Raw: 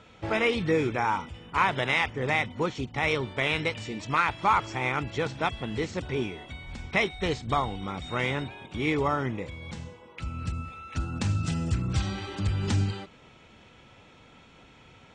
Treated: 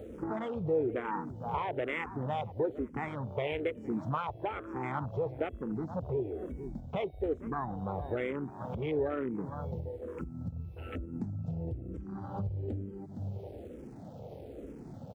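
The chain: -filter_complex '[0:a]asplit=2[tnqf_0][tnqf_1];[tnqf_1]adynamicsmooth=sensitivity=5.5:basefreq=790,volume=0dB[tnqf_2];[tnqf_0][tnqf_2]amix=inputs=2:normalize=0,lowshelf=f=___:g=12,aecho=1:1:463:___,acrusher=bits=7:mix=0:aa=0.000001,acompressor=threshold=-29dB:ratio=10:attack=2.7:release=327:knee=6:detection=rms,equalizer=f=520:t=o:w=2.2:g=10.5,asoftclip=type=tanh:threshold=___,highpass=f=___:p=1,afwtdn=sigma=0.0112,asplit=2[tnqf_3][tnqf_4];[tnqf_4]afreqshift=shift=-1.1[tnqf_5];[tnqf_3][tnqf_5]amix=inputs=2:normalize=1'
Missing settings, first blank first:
150, 0.119, -19dB, 97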